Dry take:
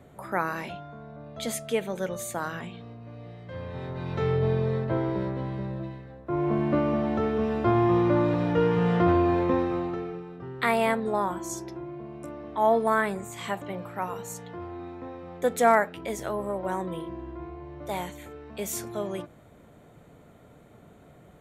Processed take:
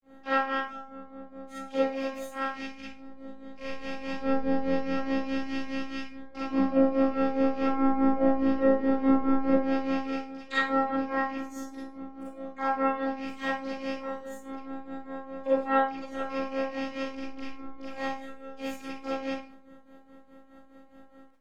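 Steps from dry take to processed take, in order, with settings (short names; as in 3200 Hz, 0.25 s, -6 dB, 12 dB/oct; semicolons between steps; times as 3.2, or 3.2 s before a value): rattling part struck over -37 dBFS, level -24 dBFS; treble ducked by the level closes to 920 Hz, closed at -19 dBFS; tone controls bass +1 dB, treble -7 dB; harmoniser +3 st -10 dB, +12 st -8 dB; robotiser 269 Hz; grains 0.208 s, grains 4.8/s, pitch spread up and down by 0 st; Schroeder reverb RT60 0.37 s, combs from 33 ms, DRR -9 dB; gain -6.5 dB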